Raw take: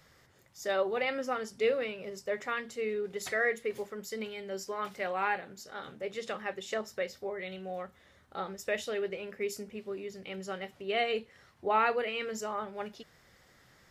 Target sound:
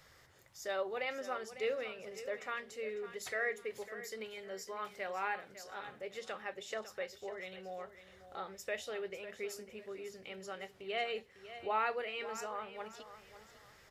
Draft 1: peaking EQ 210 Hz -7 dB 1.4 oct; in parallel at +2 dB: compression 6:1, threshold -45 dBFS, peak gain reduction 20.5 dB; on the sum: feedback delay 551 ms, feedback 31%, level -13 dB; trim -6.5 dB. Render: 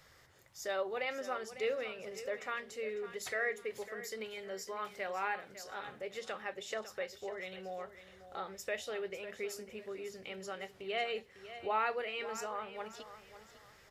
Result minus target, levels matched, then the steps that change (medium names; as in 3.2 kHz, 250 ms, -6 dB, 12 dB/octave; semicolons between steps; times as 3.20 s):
compression: peak gain reduction -8 dB
change: compression 6:1, threshold -54.5 dBFS, peak gain reduction 28.5 dB